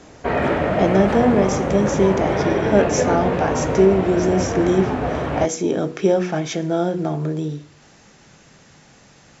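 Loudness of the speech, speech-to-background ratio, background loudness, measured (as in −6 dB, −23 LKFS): −20.5 LKFS, 1.5 dB, −22.0 LKFS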